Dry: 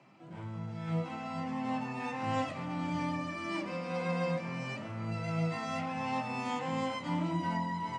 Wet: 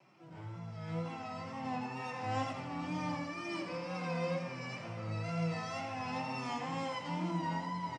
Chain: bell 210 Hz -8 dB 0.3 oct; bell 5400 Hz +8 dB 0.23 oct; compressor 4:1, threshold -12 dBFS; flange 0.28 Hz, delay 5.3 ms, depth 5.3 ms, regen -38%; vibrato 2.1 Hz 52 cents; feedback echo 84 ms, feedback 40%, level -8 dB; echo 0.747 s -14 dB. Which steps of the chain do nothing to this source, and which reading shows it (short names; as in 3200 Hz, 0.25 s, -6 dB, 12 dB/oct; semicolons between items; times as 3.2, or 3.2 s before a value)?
compressor, threshold -12 dBFS: input peak -20.5 dBFS